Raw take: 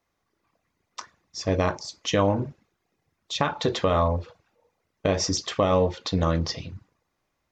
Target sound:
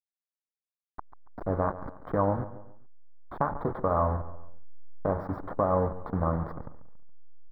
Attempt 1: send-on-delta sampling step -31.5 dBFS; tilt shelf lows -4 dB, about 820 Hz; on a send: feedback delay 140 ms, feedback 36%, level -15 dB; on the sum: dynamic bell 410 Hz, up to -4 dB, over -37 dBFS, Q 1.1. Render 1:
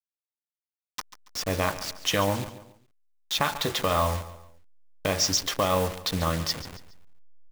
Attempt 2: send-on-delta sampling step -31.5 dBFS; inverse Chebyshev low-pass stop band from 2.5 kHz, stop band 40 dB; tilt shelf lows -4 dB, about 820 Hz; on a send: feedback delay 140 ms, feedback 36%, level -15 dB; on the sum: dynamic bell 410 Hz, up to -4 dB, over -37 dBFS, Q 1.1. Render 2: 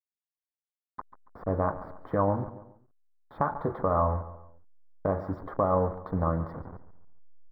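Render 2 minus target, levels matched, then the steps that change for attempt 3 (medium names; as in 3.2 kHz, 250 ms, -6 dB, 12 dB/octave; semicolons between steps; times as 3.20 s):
send-on-delta sampling: distortion -8 dB
change: send-on-delta sampling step -25 dBFS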